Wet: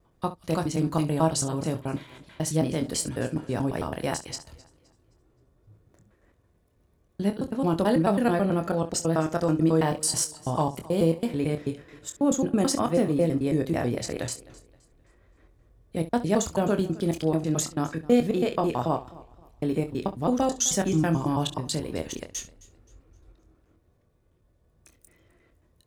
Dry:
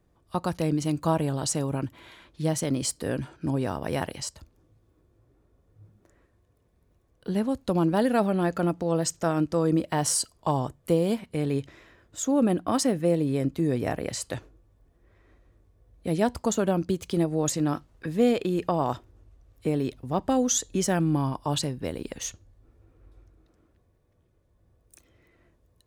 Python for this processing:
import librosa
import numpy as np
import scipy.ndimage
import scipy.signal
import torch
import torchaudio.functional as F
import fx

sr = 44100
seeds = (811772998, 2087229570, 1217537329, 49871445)

y = fx.block_reorder(x, sr, ms=109.0, group=2)
y = fx.room_early_taps(y, sr, ms=(25, 67), db=(-8.0, -15.5))
y = fx.echo_warbled(y, sr, ms=261, feedback_pct=34, rate_hz=2.8, cents=66, wet_db=-21)